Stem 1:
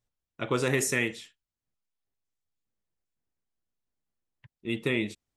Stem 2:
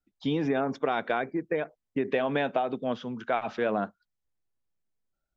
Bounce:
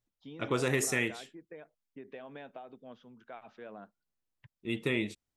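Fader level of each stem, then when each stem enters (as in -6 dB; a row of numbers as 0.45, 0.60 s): -3.0, -19.5 dB; 0.00, 0.00 s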